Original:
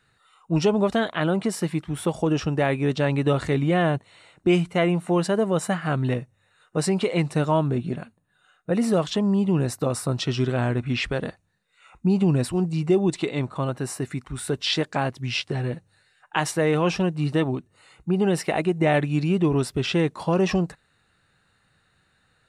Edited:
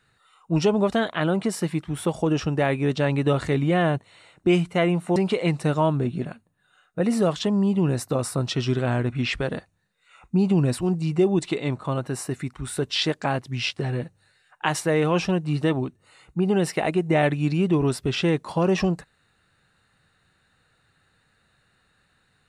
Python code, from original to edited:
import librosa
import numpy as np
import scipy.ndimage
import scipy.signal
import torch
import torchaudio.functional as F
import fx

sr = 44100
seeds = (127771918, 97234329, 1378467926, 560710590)

y = fx.edit(x, sr, fx.cut(start_s=5.16, length_s=1.71), tone=tone)